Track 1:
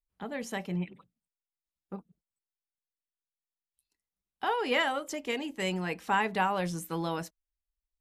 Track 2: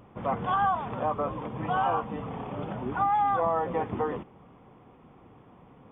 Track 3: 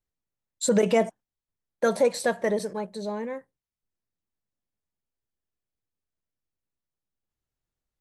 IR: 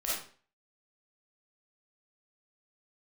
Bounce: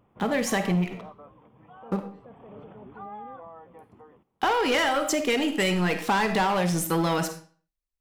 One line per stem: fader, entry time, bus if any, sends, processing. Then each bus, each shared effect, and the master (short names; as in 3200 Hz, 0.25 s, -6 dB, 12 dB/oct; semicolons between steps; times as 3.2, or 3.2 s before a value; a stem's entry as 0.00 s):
+1.5 dB, 0.00 s, send -12.5 dB, sample leveller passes 3
-11.0 dB, 0.00 s, no send, auto duck -12 dB, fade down 1.85 s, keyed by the first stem
-12.5 dB, 0.00 s, no send, limiter -25.5 dBFS, peak gain reduction 14 dB; Bessel low-pass 640 Hz, order 2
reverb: on, RT60 0.45 s, pre-delay 10 ms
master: compressor, threshold -21 dBFS, peak gain reduction 6.5 dB